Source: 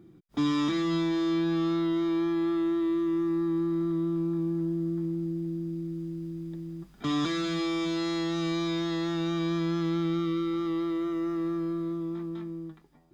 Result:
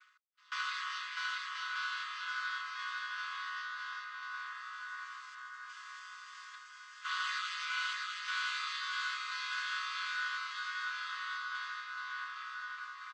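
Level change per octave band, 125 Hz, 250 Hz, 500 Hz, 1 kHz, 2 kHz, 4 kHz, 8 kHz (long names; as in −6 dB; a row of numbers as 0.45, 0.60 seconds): below −40 dB, below −40 dB, below −40 dB, −0.5 dB, +8.0 dB, −1.0 dB, can't be measured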